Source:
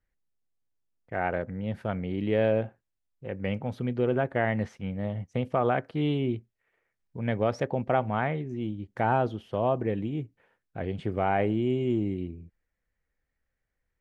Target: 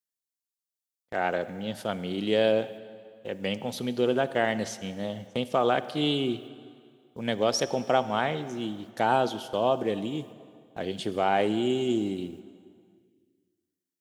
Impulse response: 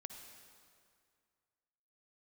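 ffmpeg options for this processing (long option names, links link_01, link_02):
-filter_complex "[0:a]highpass=210,agate=range=-18dB:threshold=-46dB:ratio=16:detection=peak,asplit=2[link_01][link_02];[1:a]atrim=start_sample=2205[link_03];[link_02][link_03]afir=irnorm=-1:irlink=0,volume=-1dB[link_04];[link_01][link_04]amix=inputs=2:normalize=0,aexciter=amount=7.8:drive=4.1:freq=3200,volume=-1.5dB"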